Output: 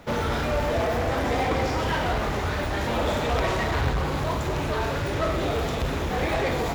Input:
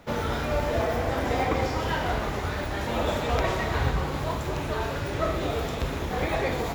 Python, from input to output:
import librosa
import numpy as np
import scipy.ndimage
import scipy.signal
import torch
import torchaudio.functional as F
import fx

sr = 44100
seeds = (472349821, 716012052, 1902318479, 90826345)

p1 = 10.0 ** (-26.5 / 20.0) * (np.abs((x / 10.0 ** (-26.5 / 20.0) + 3.0) % 4.0 - 2.0) - 1.0)
p2 = x + F.gain(torch.from_numpy(p1), -4.5).numpy()
y = fx.doppler_dist(p2, sr, depth_ms=0.18)